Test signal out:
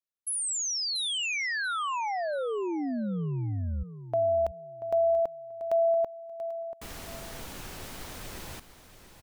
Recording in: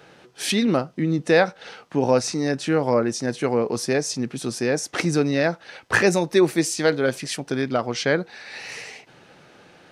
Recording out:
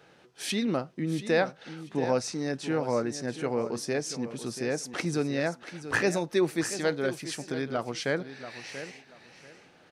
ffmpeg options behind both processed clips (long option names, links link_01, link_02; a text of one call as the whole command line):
ffmpeg -i in.wav -af "aecho=1:1:685|1370|2055:0.251|0.0527|0.0111,volume=-8dB" out.wav